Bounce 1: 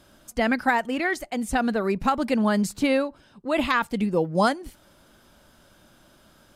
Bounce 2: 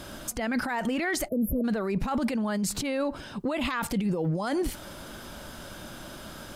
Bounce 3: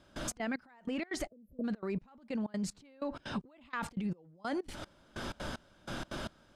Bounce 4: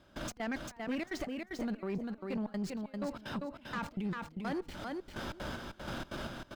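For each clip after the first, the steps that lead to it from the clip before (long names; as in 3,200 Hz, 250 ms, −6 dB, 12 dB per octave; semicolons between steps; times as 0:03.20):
time-frequency box erased 0:01.28–0:01.64, 660–11,000 Hz; compressor whose output falls as the input rises −31 dBFS, ratio −1; brickwall limiter −27.5 dBFS, peak gain reduction 11 dB; level +7 dB
high-frequency loss of the air 71 metres; downward compressor 10 to 1, threshold −36 dBFS, peak gain reduction 13 dB; gate pattern "..xx.xx.." 189 BPM −24 dB; level +4 dB
running median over 5 samples; repeating echo 396 ms, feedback 16%, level −4.5 dB; tube saturation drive 31 dB, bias 0.4; level +1.5 dB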